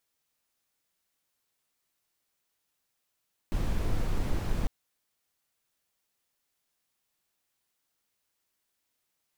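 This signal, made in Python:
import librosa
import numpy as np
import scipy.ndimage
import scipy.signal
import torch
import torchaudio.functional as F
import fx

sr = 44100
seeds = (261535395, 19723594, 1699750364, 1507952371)

y = fx.noise_colour(sr, seeds[0], length_s=1.15, colour='brown', level_db=-27.0)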